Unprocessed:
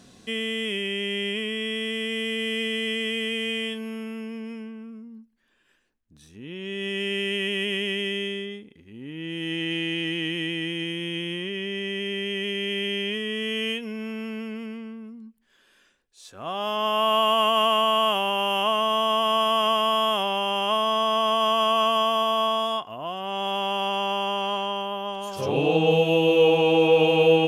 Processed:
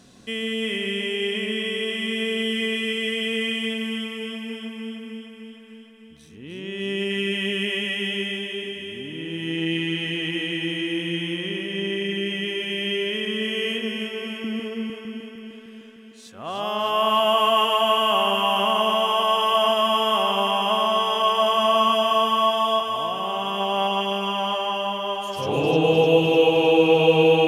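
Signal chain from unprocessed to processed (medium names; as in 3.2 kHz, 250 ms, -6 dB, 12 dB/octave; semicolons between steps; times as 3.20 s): 14.44–14.90 s: resonant high-pass 310 Hz, resonance Q 3.5; echo whose repeats swap between lows and highs 152 ms, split 1.9 kHz, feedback 81%, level -3 dB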